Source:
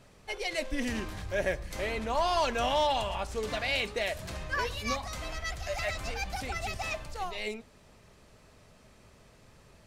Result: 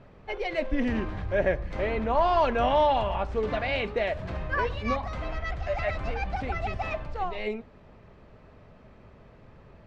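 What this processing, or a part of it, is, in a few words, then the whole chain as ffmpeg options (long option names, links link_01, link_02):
phone in a pocket: -af "lowpass=3100,highshelf=frequency=2200:gain=-10.5,volume=6.5dB"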